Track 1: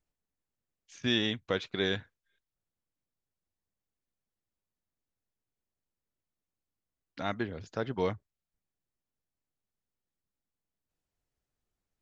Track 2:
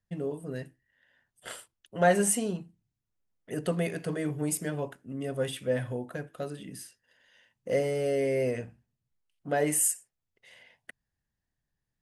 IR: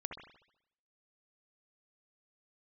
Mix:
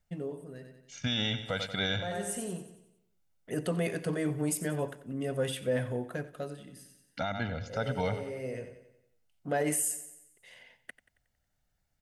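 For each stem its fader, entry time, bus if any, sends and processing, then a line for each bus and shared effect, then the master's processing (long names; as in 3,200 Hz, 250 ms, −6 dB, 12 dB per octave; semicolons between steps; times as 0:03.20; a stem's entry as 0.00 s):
+2.5 dB, 0.00 s, no send, echo send −13.5 dB, comb filter 1.4 ms, depth 85%
+0.5 dB, 0.00 s, no send, echo send −17 dB, automatic ducking −17 dB, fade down 0.90 s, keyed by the first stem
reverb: not used
echo: repeating echo 91 ms, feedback 49%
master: brickwall limiter −20.5 dBFS, peak gain reduction 9.5 dB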